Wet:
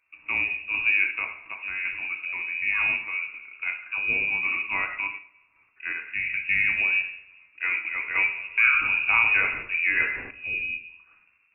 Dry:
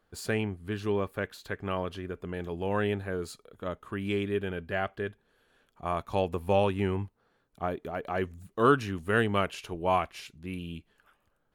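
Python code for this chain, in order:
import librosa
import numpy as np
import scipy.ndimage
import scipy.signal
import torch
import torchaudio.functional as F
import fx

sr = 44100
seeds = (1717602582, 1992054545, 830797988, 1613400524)

y = fx.peak_eq(x, sr, hz=240.0, db=11.0, octaves=1.4)
y = fx.rev_double_slope(y, sr, seeds[0], early_s=0.68, late_s=2.0, knee_db=-25, drr_db=1.5)
y = fx.tremolo_random(y, sr, seeds[1], hz=2.7, depth_pct=55)
y = fx.freq_invert(y, sr, carrier_hz=2700)
y = fx.peak_eq(y, sr, hz=75.0, db=7.0, octaves=0.47)
y = fx.band_squash(y, sr, depth_pct=70, at=(8.15, 10.31))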